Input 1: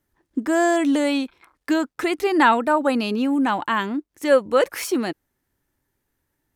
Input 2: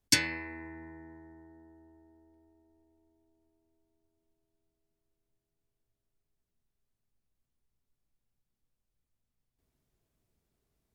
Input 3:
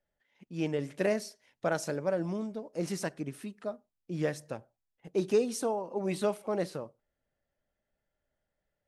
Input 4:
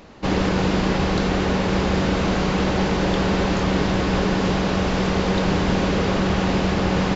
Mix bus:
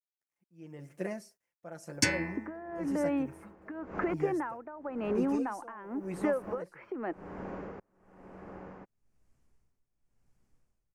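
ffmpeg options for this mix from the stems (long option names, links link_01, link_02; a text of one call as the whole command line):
ffmpeg -i stem1.wav -i stem2.wav -i stem3.wav -i stem4.wav -filter_complex "[0:a]lowpass=frequency=3500:width=0.5412,lowpass=frequency=3500:width=1.3066,acompressor=threshold=-18dB:ratio=6,adelay=2000,volume=-0.5dB[link_01];[1:a]dynaudnorm=framelen=400:gausssize=9:maxgain=12dB,lowpass=7400,adelay=1900,volume=-3dB[link_02];[2:a]aecho=1:1:5.8:0.75,acrusher=bits=10:mix=0:aa=0.000001,volume=-13.5dB,asplit=2[link_03][link_04];[3:a]bass=frequency=250:gain=5,treble=frequency=4000:gain=6,aeval=exprs='val(0)*pow(10,-37*if(lt(mod(-0.82*n/s,1),2*abs(-0.82)/1000),1-mod(-0.82*n/s,1)/(2*abs(-0.82)/1000),(mod(-0.82*n/s,1)-2*abs(-0.82)/1000)/(1-2*abs(-0.82)/1000))/20)':channel_layout=same,adelay=1700,volume=-10.5dB[link_05];[link_04]apad=whole_len=390480[link_06];[link_05][link_06]sidechaincompress=threshold=-42dB:ratio=8:attack=16:release=584[link_07];[link_01][link_07]amix=inputs=2:normalize=0,acrossover=split=270 2100:gain=0.2 1 0.0708[link_08][link_09][link_10];[link_08][link_09][link_10]amix=inputs=3:normalize=0,acompressor=threshold=-32dB:ratio=12,volume=0dB[link_11];[link_02][link_03][link_11]amix=inputs=3:normalize=0,equalizer=frequency=3700:width_type=o:width=0.82:gain=-12.5,dynaudnorm=framelen=120:gausssize=9:maxgain=5.5dB,tremolo=f=0.96:d=0.82" out.wav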